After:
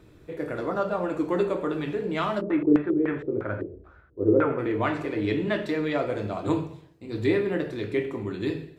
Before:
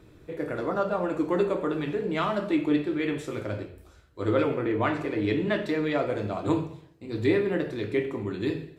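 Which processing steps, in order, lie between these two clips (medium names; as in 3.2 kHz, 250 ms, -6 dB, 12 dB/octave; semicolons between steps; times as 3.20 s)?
2.40–4.57 s: LFO low-pass square 4.4 Hz -> 1.4 Hz 410–1500 Hz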